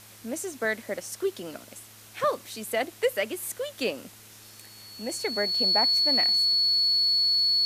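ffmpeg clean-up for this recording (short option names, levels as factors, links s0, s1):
-af "bandreject=f=108.3:t=h:w=4,bandreject=f=216.6:t=h:w=4,bandreject=f=324.9:t=h:w=4,bandreject=f=433.2:t=h:w=4,bandreject=f=4400:w=30,afftdn=nr=23:nf=-50"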